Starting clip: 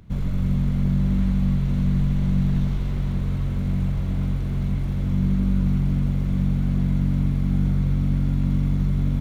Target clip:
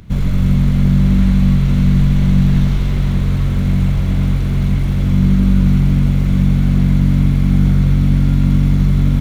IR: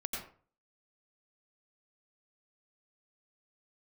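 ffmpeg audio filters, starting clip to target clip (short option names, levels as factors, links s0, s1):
-filter_complex "[0:a]asplit=2[s0][s1];[s1]highpass=1200[s2];[1:a]atrim=start_sample=2205[s3];[s2][s3]afir=irnorm=-1:irlink=0,volume=0.596[s4];[s0][s4]amix=inputs=2:normalize=0,volume=2.82"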